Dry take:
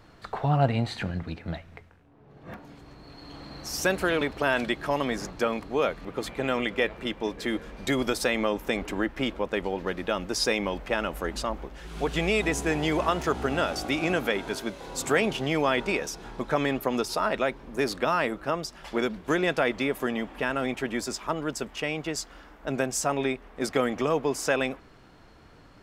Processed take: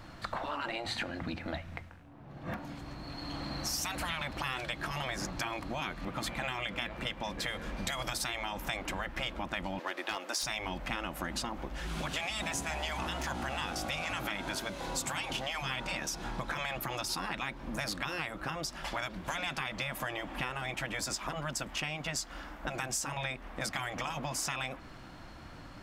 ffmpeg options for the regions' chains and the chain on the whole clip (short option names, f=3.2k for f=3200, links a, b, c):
-filter_complex "[0:a]asettb=1/sr,asplit=3[a][b][c];[a]atrim=end=9.794[d];[b]atrim=start=9.79:end=10.43,asetpts=PTS-STARTPTS,afade=t=in:d=0.004:c=qsin,afade=t=out:st=0.636:d=0.004:c=qsin,highpass=f=390:w=0.5412,highpass=f=390:w=1.3066,asoftclip=type=hard:threshold=-21.5dB[e];[c]atrim=start=10.426[f];[d][e]acrossfade=d=0.004:c1=hsin:c2=qsin[g];[g][f]acrossfade=d=0.004:c1=qsin:c2=hsin,afftfilt=real='re*lt(hypot(re,im),0.141)':imag='im*lt(hypot(re,im),0.141)':win_size=1024:overlap=0.75,acompressor=threshold=-37dB:ratio=6,equalizer=f=430:w=6.5:g=-14,volume=5dB"